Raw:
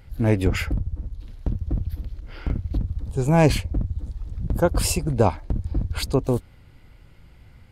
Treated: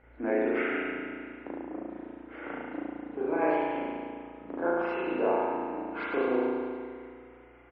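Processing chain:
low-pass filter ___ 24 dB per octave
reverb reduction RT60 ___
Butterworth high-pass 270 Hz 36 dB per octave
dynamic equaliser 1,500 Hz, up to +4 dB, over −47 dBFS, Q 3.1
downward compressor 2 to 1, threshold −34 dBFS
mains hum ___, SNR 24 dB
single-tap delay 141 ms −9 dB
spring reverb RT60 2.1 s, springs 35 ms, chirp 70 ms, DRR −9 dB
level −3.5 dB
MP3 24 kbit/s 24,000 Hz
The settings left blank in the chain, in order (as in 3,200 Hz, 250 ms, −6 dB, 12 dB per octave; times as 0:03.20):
2,200 Hz, 0.52 s, 60 Hz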